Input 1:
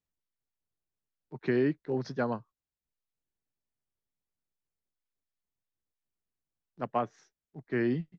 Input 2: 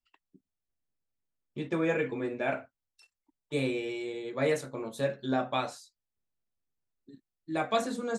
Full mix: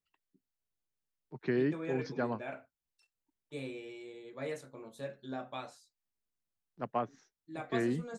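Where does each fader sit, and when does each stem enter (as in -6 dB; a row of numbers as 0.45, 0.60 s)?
-3.5, -11.5 dB; 0.00, 0.00 s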